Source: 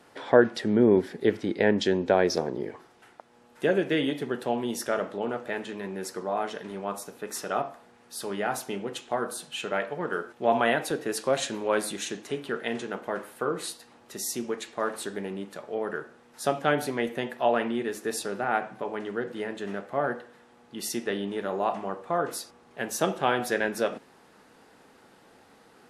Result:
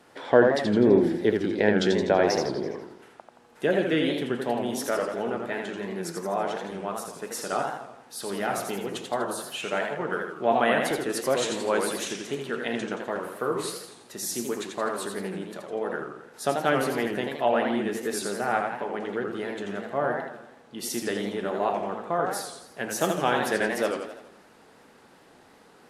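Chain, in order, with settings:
on a send at −20 dB: convolution reverb RT60 0.30 s, pre-delay 60 ms
on the sum: feedback echo with a swinging delay time 83 ms, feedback 53%, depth 181 cents, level −5 dB

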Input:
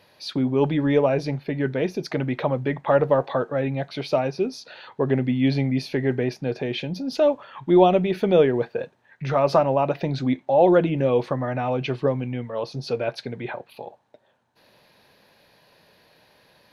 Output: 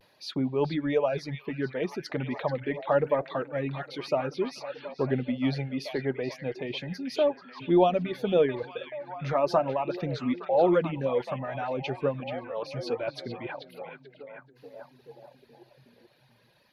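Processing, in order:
pitch vibrato 0.36 Hz 28 cents
reverb reduction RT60 1.9 s
echo through a band-pass that steps 433 ms, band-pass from 2,900 Hz, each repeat −0.7 octaves, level −4.5 dB
level −5 dB

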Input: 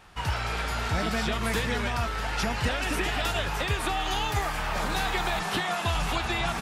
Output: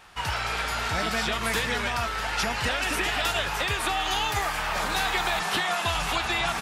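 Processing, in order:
low-shelf EQ 460 Hz −9 dB
level +4 dB

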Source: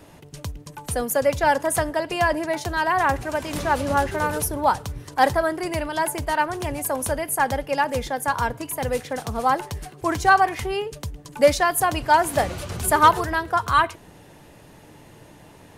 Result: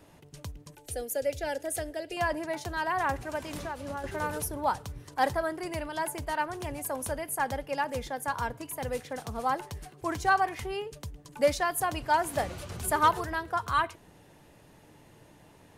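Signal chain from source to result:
0:00.75–0:02.17: phaser with its sweep stopped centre 440 Hz, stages 4
0:03.50–0:04.04: downward compressor 6 to 1, threshold −25 dBFS, peak gain reduction 10.5 dB
level −8.5 dB

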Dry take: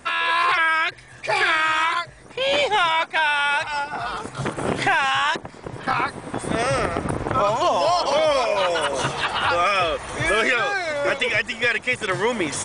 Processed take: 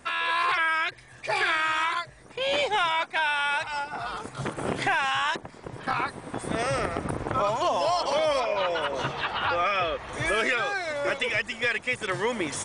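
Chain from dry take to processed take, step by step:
0:08.40–0:10.13: low-pass filter 4,200 Hz 12 dB per octave
level −5.5 dB

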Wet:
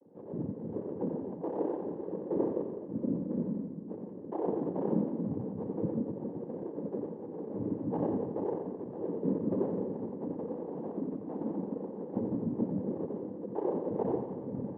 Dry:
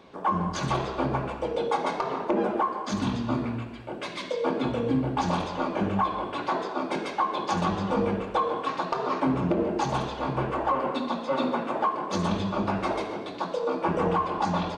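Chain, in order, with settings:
Chebyshev band-pass filter 180–500 Hz, order 5
cochlear-implant simulation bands 8
on a send: echo with a time of its own for lows and highs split 310 Hz, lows 259 ms, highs 87 ms, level −7 dB
on the sum: level −3.5 dB

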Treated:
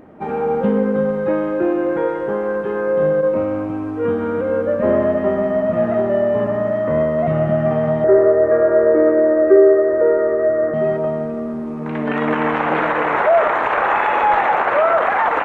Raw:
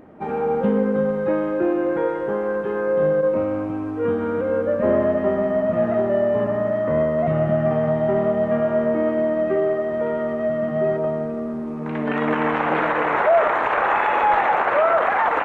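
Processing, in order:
0:08.04–0:10.74: drawn EQ curve 110 Hz 0 dB, 200 Hz −22 dB, 330 Hz +10 dB, 520 Hz +11 dB, 780 Hz −5 dB, 1,700 Hz +6 dB, 3,500 Hz −27 dB, 6,600 Hz −5 dB
level +2.5 dB

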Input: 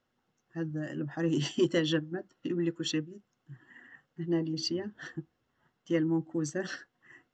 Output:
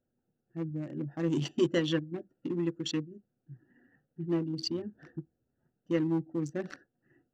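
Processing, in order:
adaptive Wiener filter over 41 samples

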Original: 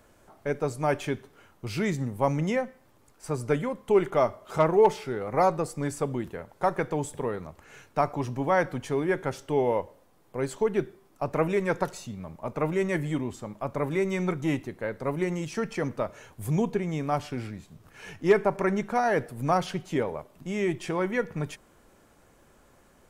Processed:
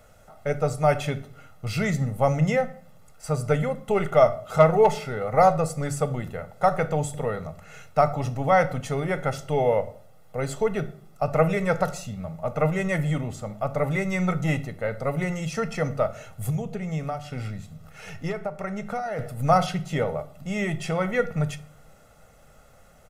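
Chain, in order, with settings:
comb filter 1.5 ms, depth 76%
0:16.50–0:19.19: downward compressor 12 to 1, threshold −29 dBFS, peak gain reduction 14 dB
rectangular room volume 540 cubic metres, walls furnished, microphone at 0.55 metres
level +2 dB

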